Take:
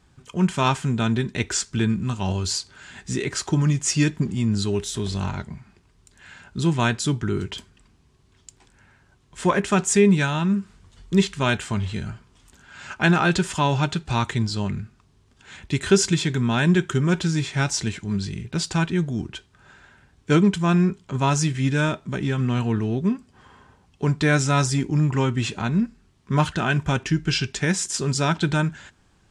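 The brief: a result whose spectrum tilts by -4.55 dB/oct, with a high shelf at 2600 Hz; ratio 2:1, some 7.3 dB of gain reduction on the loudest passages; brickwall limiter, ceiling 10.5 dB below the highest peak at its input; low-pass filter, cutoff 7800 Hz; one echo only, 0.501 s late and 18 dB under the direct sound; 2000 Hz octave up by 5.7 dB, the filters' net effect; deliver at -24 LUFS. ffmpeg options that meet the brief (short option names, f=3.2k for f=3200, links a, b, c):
-af "lowpass=7.8k,equalizer=f=2k:t=o:g=6.5,highshelf=f=2.6k:g=3,acompressor=threshold=-24dB:ratio=2,alimiter=limit=-18.5dB:level=0:latency=1,aecho=1:1:501:0.126,volume=4.5dB"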